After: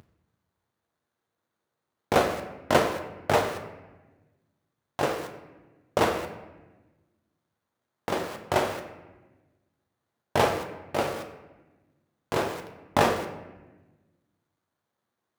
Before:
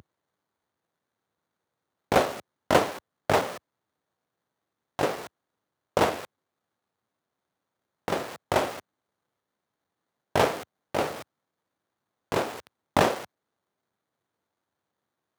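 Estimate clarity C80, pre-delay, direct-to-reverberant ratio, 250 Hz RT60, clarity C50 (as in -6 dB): 10.5 dB, 8 ms, 4.5 dB, 1.7 s, 9.0 dB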